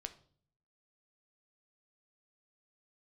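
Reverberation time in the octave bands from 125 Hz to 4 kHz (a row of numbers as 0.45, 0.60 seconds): 0.85, 0.75, 0.60, 0.45, 0.35, 0.45 seconds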